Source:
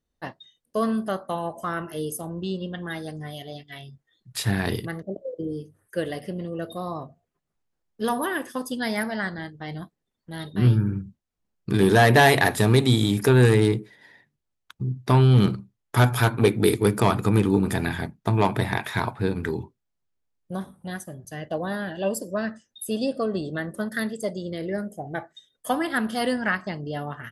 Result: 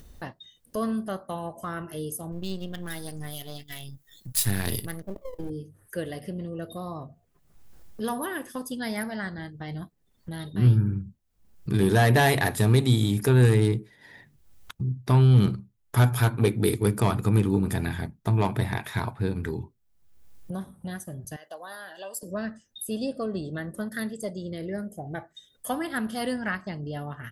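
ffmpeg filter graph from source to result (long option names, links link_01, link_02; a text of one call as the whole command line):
ffmpeg -i in.wav -filter_complex "[0:a]asettb=1/sr,asplit=3[link_01][link_02][link_03];[link_01]atrim=end=2.324[link_04];[link_02]atrim=start=2.32:end=5.5,asetpts=PTS-STARTPTS,afade=type=in:duration=0.004:curve=qsin,afade=type=out:start_time=3.176:duration=0.004:curve=qsin,aeval=exprs='if(lt(val(0),0),0.447*val(0),val(0))':channel_layout=same,aemphasis=mode=production:type=75kf[link_05];[link_03]atrim=start=5.496[link_06];[link_04][link_05]acrossfade=duration=0.004:curve1=hsin:curve2=qsin[link_07];[link_07][link_06]acrossfade=duration=0.004:curve1=qsin:curve2=hsin,asettb=1/sr,asplit=3[link_08][link_09][link_10];[link_08]atrim=end=21.364[link_11];[link_09]atrim=start=21.36:end=22.23,asetpts=PTS-STARTPTS,afade=type=in:duration=0.004:curve=qsin,afade=type=out:start_time=0.866:duration=0.004:curve=qsin,highpass=1100,equalizer=frequency=2400:width=1.1:gain=-10[link_12];[link_10]atrim=start=22.226[link_13];[link_11][link_12]acrossfade=duration=0.004:curve1=hsin:curve2=qsin[link_14];[link_14][link_13]acrossfade=duration=0.004:curve1=qsin:curve2=hsin,highshelf=frequency=9800:gain=8.5,acompressor=mode=upward:threshold=-27dB:ratio=2.5,lowshelf=frequency=130:gain=11,volume=-6dB" out.wav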